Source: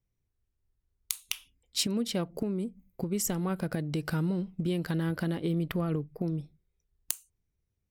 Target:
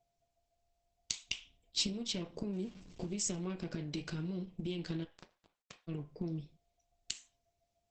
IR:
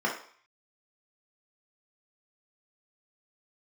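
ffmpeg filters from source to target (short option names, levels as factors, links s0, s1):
-filter_complex "[0:a]asettb=1/sr,asplit=3[s0][s1][s2];[s0]atrim=end=2.534[s3];[s1]atrim=start=2.53:end=3.17,asetpts=PTS-STARTPTS,afade=t=in:d=0.004:c=qsin,afade=t=out:st=0.636:d=0.004:c=qsin,aeval=exprs='val(0)+0.5*0.00562*sgn(val(0))':c=same[s4];[s2]atrim=start=3.166[s5];[s3][s4]acrossfade=d=0.004:c1=hsin:c2=qsin[s6];[s6][s5]acrossfade=d=0.004:c1=qsin:c2=hsin,lowpass=5400,bandreject=f=259.4:t=h:w=4,bandreject=f=518.8:t=h:w=4,bandreject=f=778.2:t=h:w=4,bandreject=f=1037.6:t=h:w=4,asettb=1/sr,asplit=3[s7][s8][s9];[s7]atrim=end=1.234[s10];[s8]atrim=start=1.23:end=1.93,asetpts=PTS-STARTPTS,afade=t=in:d=0.004:c=qsin,afade=t=out:st=0.696:d=0.004:c=qsin,tiltshelf=f=710:g=5.5[s11];[s9]atrim=start=1.926[s12];[s10][s11]acrossfade=d=0.004:c1=hsin:c2=qsin[s13];[s13][s12]acrossfade=d=0.004:c1=qsin:c2=hsin,acompressor=threshold=0.0251:ratio=6,aeval=exprs='(tanh(15.8*val(0)+0.65)-tanh(0.65))/15.8':c=same,aeval=exprs='val(0)+0.000316*sin(2*PI*690*n/s)':c=same,aexciter=amount=4.3:drive=2.7:freq=2200,asplit=3[s14][s15][s16];[s14]afade=t=out:st=5.03:d=0.02[s17];[s15]acrusher=bits=3:mix=0:aa=0.5,afade=t=in:st=5.03:d=0.02,afade=t=out:st=5.87:d=0.02[s18];[s16]afade=t=in:st=5.87:d=0.02[s19];[s17][s18][s19]amix=inputs=3:normalize=0,flanger=delay=7.1:depth=4.9:regen=-69:speed=0.69:shape=sinusoidal,asplit=2[s20][s21];[1:a]atrim=start_sample=2205,asetrate=70560,aresample=44100[s22];[s21][s22]afir=irnorm=-1:irlink=0,volume=0.237[s23];[s20][s23]amix=inputs=2:normalize=0,volume=1.41" -ar 48000 -c:a libopus -b:a 12k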